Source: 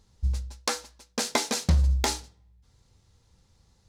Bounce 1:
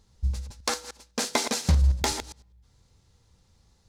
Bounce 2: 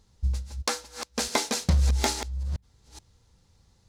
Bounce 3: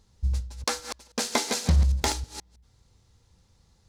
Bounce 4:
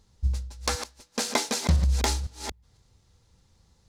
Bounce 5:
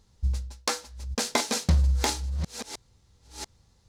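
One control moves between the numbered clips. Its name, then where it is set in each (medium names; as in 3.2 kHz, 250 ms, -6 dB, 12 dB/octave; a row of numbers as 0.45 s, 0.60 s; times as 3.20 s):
chunks repeated in reverse, time: 101 ms, 427 ms, 160 ms, 252 ms, 689 ms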